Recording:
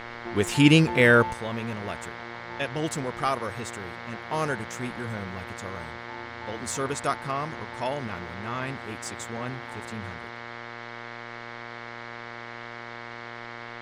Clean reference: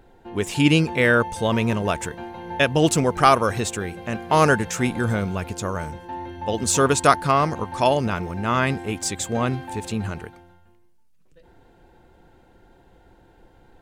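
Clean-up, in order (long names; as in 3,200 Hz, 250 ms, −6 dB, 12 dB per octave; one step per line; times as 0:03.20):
hum removal 118 Hz, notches 19
noise reduction from a noise print 14 dB
level 0 dB, from 0:01.33 +11.5 dB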